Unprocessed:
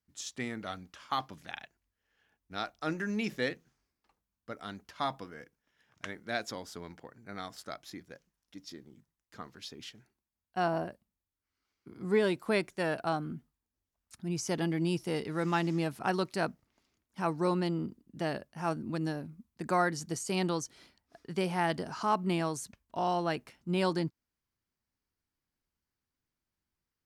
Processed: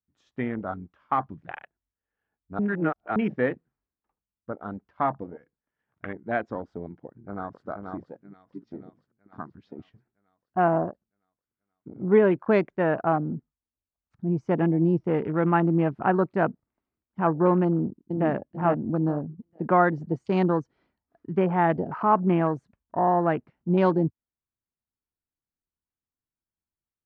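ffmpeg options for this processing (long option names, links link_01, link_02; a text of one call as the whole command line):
ffmpeg -i in.wav -filter_complex "[0:a]asplit=2[link_01][link_02];[link_02]afade=type=in:start_time=7.06:duration=0.01,afade=type=out:start_time=7.67:duration=0.01,aecho=0:1:480|960|1440|1920|2400|2880|3360|3840|4320|4800:0.630957|0.410122|0.266579|0.173277|0.11263|0.0732094|0.0475861|0.030931|0.0201051|0.0130683[link_03];[link_01][link_03]amix=inputs=2:normalize=0,asplit=2[link_04][link_05];[link_05]afade=type=in:start_time=17.66:duration=0.01,afade=type=out:start_time=18.3:duration=0.01,aecho=0:1:440|880|1320|1760:0.595662|0.178699|0.0536096|0.0160829[link_06];[link_04][link_06]amix=inputs=2:normalize=0,asplit=3[link_07][link_08][link_09];[link_07]atrim=end=2.592[link_10];[link_08]atrim=start=2.588:end=3.162,asetpts=PTS-STARTPTS,areverse[link_11];[link_09]atrim=start=3.158[link_12];[link_10][link_11]acrossfade=duration=0.004:curve1=hsin:curve2=hsin[link_13];[link_13][link_12]acrossfade=duration=0.004:curve1=hsin:curve2=hsin,afwtdn=0.00891,lowpass=1500,volume=9dB" out.wav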